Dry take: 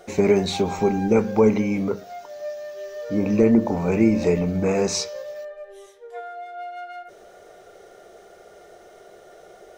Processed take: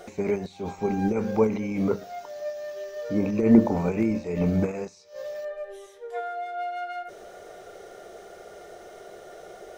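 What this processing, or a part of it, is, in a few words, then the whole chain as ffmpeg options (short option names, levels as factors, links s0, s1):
de-esser from a sidechain: -filter_complex "[0:a]asplit=2[s0][s1];[s1]highpass=f=4600:w=0.5412,highpass=f=4600:w=1.3066,apad=whole_len=431236[s2];[s0][s2]sidechaincompress=threshold=0.00178:ratio=12:attack=0.92:release=94,volume=1.41"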